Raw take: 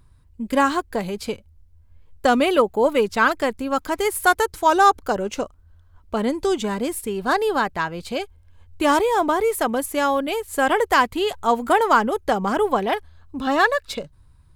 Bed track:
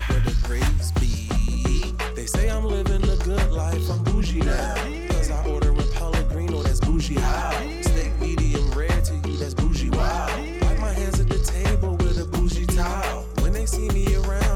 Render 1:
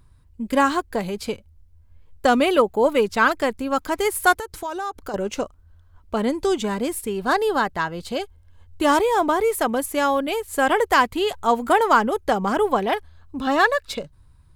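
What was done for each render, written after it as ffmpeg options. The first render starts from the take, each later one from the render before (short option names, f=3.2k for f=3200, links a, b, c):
-filter_complex "[0:a]asettb=1/sr,asplit=3[a][b][c];[a]atrim=end=4.344[d];[b]atrim=start=4.34:end=5.14,asetpts=PTS-STARTPTS,afade=t=in:d=0.004:c=qsin,afade=t=out:st=0.796:d=0.004:c=qsin,acompressor=threshold=-28dB:ratio=4:attack=3.2:release=140:knee=1:detection=peak[e];[c]atrim=start=5.136[f];[d][e]acrossfade=d=0.004:c1=hsin:c2=qsin[g];[g][f]acrossfade=d=0.004:c1=qsin:c2=hsin,asettb=1/sr,asplit=3[h][i][j];[h]atrim=end=7.384[k];[i]atrim=start=7.38:end=8.92,asetpts=PTS-STARTPTS,afade=t=in:d=0.004:c=qsin,afade=t=out:st=1.536:d=0.004:c=qsin,bandreject=f=2.4k:w=8.7[l];[j]atrim=start=8.916[m];[k][l]acrossfade=d=0.004:c1=hsin:c2=qsin[n];[n][m]acrossfade=d=0.004:c1=qsin:c2=hsin"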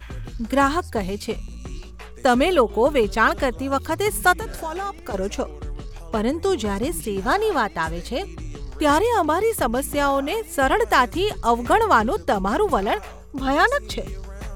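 -filter_complex "[1:a]volume=-13dB[a];[0:a][a]amix=inputs=2:normalize=0"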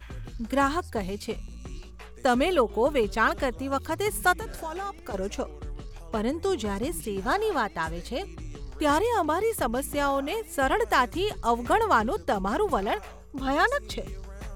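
-af "volume=-5.5dB"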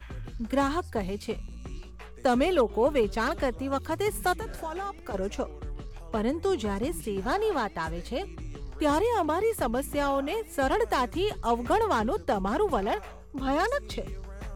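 -filter_complex "[0:a]acrossover=split=400|810|3200[a][b][c][d];[c]asoftclip=type=tanh:threshold=-29.5dB[e];[d]flanger=delay=8.5:depth=9.1:regen=57:speed=1.9:shape=triangular[f];[a][b][e][f]amix=inputs=4:normalize=0"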